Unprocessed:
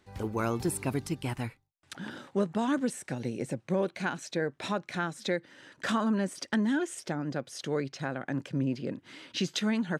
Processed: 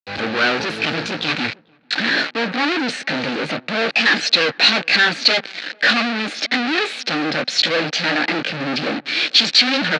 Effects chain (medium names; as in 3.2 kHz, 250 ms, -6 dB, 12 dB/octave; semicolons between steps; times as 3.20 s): sawtooth pitch modulation +3.5 st, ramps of 1402 ms; treble shelf 2 kHz -2.5 dB; doubling 13 ms -13.5 dB; fuzz box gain 55 dB, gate -53 dBFS; cabinet simulation 320–4700 Hz, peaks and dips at 390 Hz -9 dB, 630 Hz -4 dB, 1 kHz -10 dB, 1.6 kHz +4 dB, 2.5 kHz +5 dB, 4.2 kHz +8 dB; filtered feedback delay 445 ms, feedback 40%, low-pass 1.2 kHz, level -22.5 dB; three bands expanded up and down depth 70%; trim -1 dB